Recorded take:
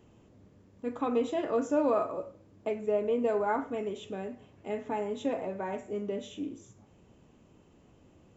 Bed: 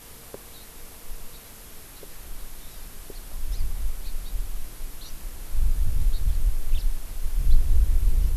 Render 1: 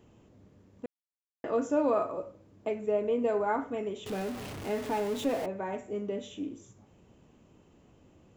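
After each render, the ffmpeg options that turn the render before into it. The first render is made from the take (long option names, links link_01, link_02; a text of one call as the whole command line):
ffmpeg -i in.wav -filter_complex "[0:a]asettb=1/sr,asplit=3[link_01][link_02][link_03];[link_01]atrim=end=4.064[link_04];[link_02]atrim=start=4.06:end=5.46,asetpts=PTS-STARTPTS,afade=type=in:duration=0.004:curve=qsin,afade=type=out:start_time=1.396:duration=0.004:curve=qsin,aeval=exprs='val(0)+0.5*0.0168*sgn(val(0))':channel_layout=same[link_05];[link_03]atrim=start=5.456[link_06];[link_04][link_05]acrossfade=duration=0.004:curve1=hsin:curve2=qsin[link_07];[link_07][link_06]acrossfade=duration=0.004:curve1=qsin:curve2=hsin,asplit=3[link_08][link_09][link_10];[link_08]atrim=end=0.86,asetpts=PTS-STARTPTS,afade=type=out:start_time=0.856:duration=0.004:curve=hsin[link_11];[link_09]atrim=start=0.86:end=1.44,asetpts=PTS-STARTPTS,volume=0[link_12];[link_10]atrim=start=1.44,asetpts=PTS-STARTPTS,afade=type=in:duration=0.004:curve=hsin[link_13];[link_11][link_12][link_13]concat=n=3:v=0:a=1" out.wav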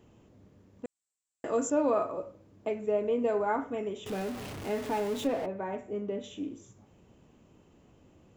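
ffmpeg -i in.wav -filter_complex "[0:a]asettb=1/sr,asplit=3[link_01][link_02][link_03];[link_01]atrim=end=0.854[link_04];[link_02]atrim=start=0.85:end=1.7,asetpts=PTS-STARTPTS,afade=type=in:duration=0.004:curve=qsin,afade=type=out:start_time=0.846:duration=0.004:curve=qsin,lowpass=frequency=7700:width_type=q:width=9[link_05];[link_03]atrim=start=1.696[link_06];[link_04][link_05]acrossfade=duration=0.004:curve1=hsin:curve2=qsin[link_07];[link_07][link_06]acrossfade=duration=0.004:curve1=qsin:curve2=hsin,asettb=1/sr,asplit=3[link_08][link_09][link_10];[link_08]atrim=end=3.494[link_11];[link_09]atrim=start=3.49:end=4.1,asetpts=PTS-STARTPTS,afade=type=in:duration=0.004:curve=qsin,afade=type=out:start_time=0.606:duration=0.004:curve=qsin,bandreject=frequency=4300:width=7[link_12];[link_10]atrim=start=4.096[link_13];[link_11][link_12]acrossfade=duration=0.004:curve1=hsin:curve2=qsin[link_14];[link_14][link_13]acrossfade=duration=0.004:curve1=qsin:curve2=hsin,asettb=1/sr,asplit=3[link_15][link_16][link_17];[link_15]atrim=end=5.274[link_18];[link_16]atrim=start=5.27:end=6.24,asetpts=PTS-STARTPTS,afade=type=in:duration=0.004:curve=qsin,afade=type=out:start_time=0.966:duration=0.004:curve=qsin,lowpass=frequency=2800:poles=1[link_19];[link_17]atrim=start=6.236[link_20];[link_18][link_19]acrossfade=duration=0.004:curve1=hsin:curve2=qsin[link_21];[link_21][link_20]acrossfade=duration=0.004:curve1=qsin:curve2=hsin" out.wav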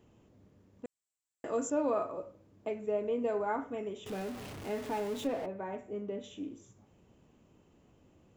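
ffmpeg -i in.wav -af "volume=-4dB" out.wav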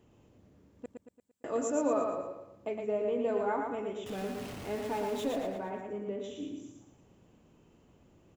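ffmpeg -i in.wav -af "aecho=1:1:114|228|342|456|570:0.631|0.271|0.117|0.0502|0.0216" out.wav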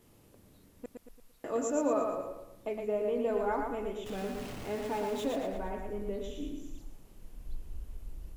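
ffmpeg -i in.wav -i bed.wav -filter_complex "[1:a]volume=-22.5dB[link_01];[0:a][link_01]amix=inputs=2:normalize=0" out.wav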